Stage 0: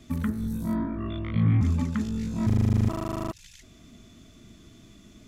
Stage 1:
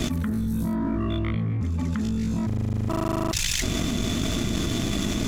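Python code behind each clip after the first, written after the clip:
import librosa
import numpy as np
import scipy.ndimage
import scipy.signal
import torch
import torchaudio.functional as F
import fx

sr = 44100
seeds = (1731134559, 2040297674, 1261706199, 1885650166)

y = fx.leveller(x, sr, passes=1)
y = fx.env_flatten(y, sr, amount_pct=100)
y = y * 10.0 ** (-8.0 / 20.0)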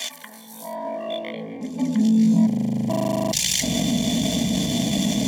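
y = fx.fixed_phaser(x, sr, hz=360.0, stages=6)
y = fx.filter_sweep_highpass(y, sr, from_hz=1300.0, to_hz=87.0, start_s=0.11, end_s=3.25, q=1.9)
y = fx.notch_comb(y, sr, f0_hz=1300.0)
y = y * 10.0 ** (7.0 / 20.0)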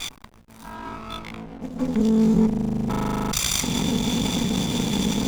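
y = fx.lower_of_two(x, sr, delay_ms=0.84)
y = fx.backlash(y, sr, play_db=-32.0)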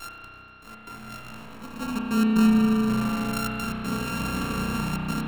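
y = np.r_[np.sort(x[:len(x) // 32 * 32].reshape(-1, 32), axis=1).ravel(), x[len(x) // 32 * 32:]]
y = fx.step_gate(y, sr, bpm=121, pattern='xxxx.x.xxxxx', floor_db=-24.0, edge_ms=4.5)
y = fx.rev_spring(y, sr, rt60_s=3.6, pass_ms=(32,), chirp_ms=75, drr_db=-3.5)
y = y * 10.0 ** (-8.5 / 20.0)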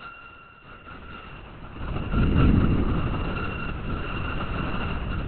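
y = fx.lpc_vocoder(x, sr, seeds[0], excitation='whisper', order=10)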